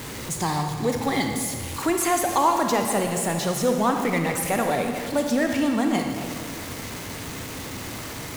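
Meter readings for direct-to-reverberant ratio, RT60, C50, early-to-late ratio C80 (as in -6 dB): 3.5 dB, 2.0 s, 4.5 dB, 5.5 dB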